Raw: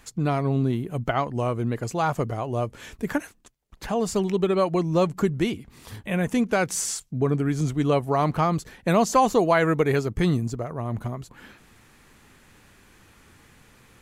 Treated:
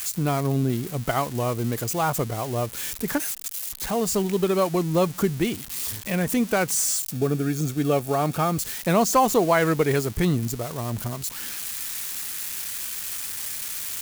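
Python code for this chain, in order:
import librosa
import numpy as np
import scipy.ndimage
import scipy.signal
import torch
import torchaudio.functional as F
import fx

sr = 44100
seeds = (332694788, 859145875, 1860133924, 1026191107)

y = x + 0.5 * 10.0 ** (-22.5 / 20.0) * np.diff(np.sign(x), prepend=np.sign(x[:1]))
y = fx.notch_comb(y, sr, f0_hz=1000.0, at=(7.12, 8.58))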